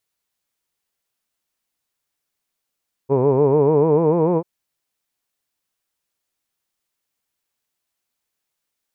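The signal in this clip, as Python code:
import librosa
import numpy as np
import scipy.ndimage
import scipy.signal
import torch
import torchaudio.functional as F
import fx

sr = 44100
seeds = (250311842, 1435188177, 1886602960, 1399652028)

y = fx.formant_vowel(sr, seeds[0], length_s=1.34, hz=130.0, glide_st=5.0, vibrato_hz=6.8, vibrato_st=1.2, f1_hz=440.0, f2_hz=960.0, f3_hz=2400.0)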